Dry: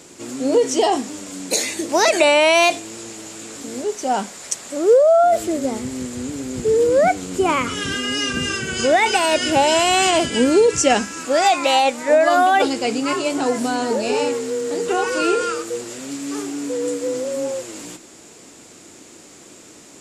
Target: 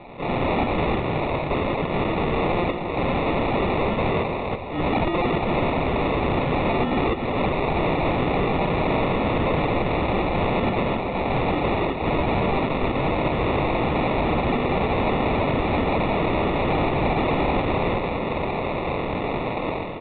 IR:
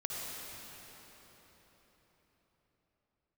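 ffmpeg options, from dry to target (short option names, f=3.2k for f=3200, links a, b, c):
-filter_complex "[0:a]highpass=f=1.4k:p=1,dynaudnorm=f=110:g=5:m=16dB,alimiter=limit=-9.5dB:level=0:latency=1:release=359,acompressor=threshold=-20dB:ratio=12,flanger=delay=17.5:depth=5.9:speed=1.3,asetrate=22696,aresample=44100,atempo=1.94306,acrusher=samples=28:mix=1:aa=0.000001,aeval=exprs='(mod(18.8*val(0)+1,2)-1)/18.8':c=same,aecho=1:1:277:0.282,asplit=2[a][b];[1:a]atrim=start_sample=2205,asetrate=38367,aresample=44100[c];[b][c]afir=irnorm=-1:irlink=0,volume=-16dB[d];[a][d]amix=inputs=2:normalize=0,aresample=8000,aresample=44100,volume=7.5dB"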